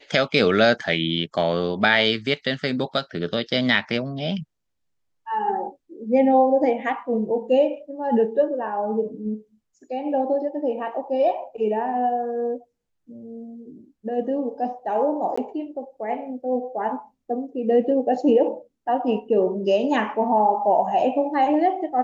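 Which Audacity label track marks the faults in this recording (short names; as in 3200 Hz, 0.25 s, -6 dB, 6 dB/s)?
15.360000	15.380000	gap 15 ms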